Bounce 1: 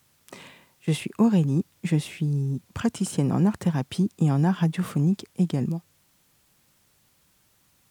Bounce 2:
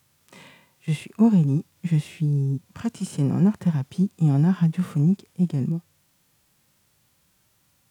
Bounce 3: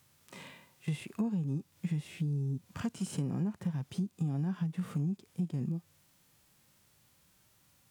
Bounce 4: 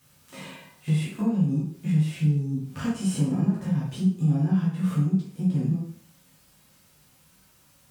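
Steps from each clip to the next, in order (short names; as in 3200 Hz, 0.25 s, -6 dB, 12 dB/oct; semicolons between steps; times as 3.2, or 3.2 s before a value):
harmonic-percussive split percussive -14 dB; gain +3 dB
compressor 6:1, threshold -29 dBFS, peak gain reduction 15.5 dB; gain -2 dB
plate-style reverb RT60 0.56 s, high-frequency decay 0.8×, DRR -7.5 dB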